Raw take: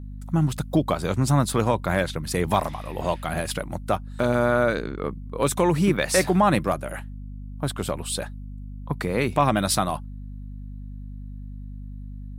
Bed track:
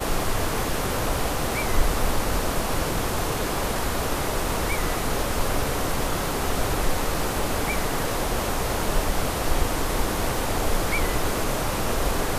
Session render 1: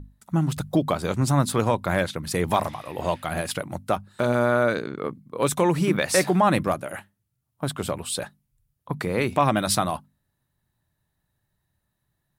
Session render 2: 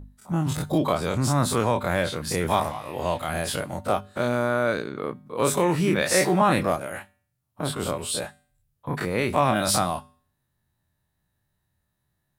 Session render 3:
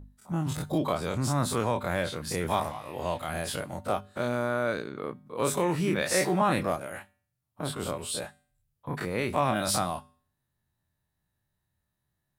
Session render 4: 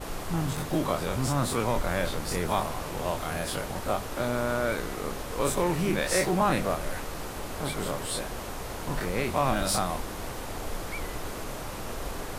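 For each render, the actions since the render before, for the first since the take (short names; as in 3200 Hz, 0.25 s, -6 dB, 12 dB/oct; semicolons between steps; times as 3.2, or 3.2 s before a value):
notches 50/100/150/200/250 Hz
spectral dilation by 60 ms; resonator 83 Hz, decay 0.49 s, harmonics odd, mix 40%
gain -5 dB
add bed track -11 dB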